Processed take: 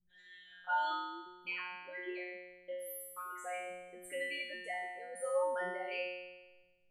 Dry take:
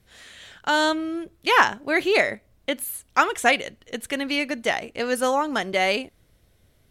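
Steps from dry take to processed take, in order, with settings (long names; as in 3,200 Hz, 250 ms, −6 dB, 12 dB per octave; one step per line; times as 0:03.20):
spectral envelope exaggerated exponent 3
0:01.48–0:04.05: downward compressor, threshold −30 dBFS, peak gain reduction 17 dB
tuned comb filter 180 Hz, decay 1.2 s, mix 100%
level +6.5 dB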